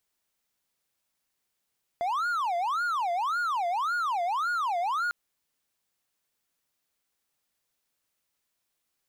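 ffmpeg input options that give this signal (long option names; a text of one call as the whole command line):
ffmpeg -f lavfi -i "aevalsrc='0.0668*(1-4*abs(mod((1063*t-377/(2*PI*1.8)*sin(2*PI*1.8*t))+0.25,1)-0.5))':duration=3.1:sample_rate=44100" out.wav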